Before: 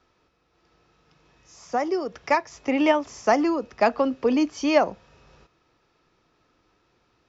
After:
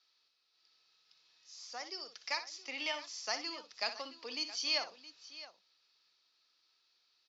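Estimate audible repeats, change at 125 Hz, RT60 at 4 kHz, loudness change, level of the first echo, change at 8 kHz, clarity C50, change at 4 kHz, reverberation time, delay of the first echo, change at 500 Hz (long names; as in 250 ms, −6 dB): 2, can't be measured, no reverb audible, −14.5 dB, −11.0 dB, can't be measured, no reverb audible, +1.5 dB, no reverb audible, 60 ms, −23.5 dB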